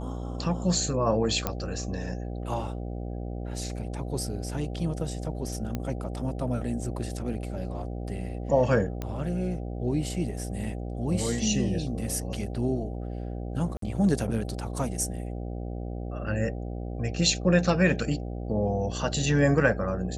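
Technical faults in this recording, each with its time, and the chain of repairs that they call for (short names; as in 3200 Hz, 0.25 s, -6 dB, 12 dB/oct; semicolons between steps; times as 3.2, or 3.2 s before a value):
buzz 60 Hz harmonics 13 -34 dBFS
1.47 pop -11 dBFS
5.75 pop -17 dBFS
9.02 pop -19 dBFS
13.77–13.82 gap 53 ms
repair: de-click; de-hum 60 Hz, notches 13; interpolate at 13.77, 53 ms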